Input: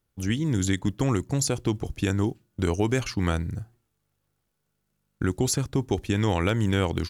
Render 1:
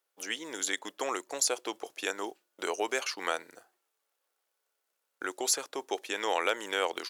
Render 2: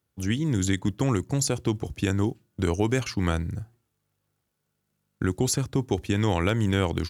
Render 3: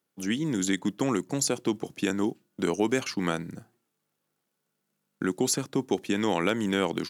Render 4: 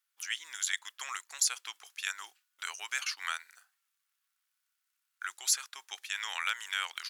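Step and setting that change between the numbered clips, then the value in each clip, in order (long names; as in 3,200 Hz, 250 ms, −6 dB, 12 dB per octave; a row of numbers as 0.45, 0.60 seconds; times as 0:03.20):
high-pass filter, corner frequency: 480, 59, 180, 1,300 Hertz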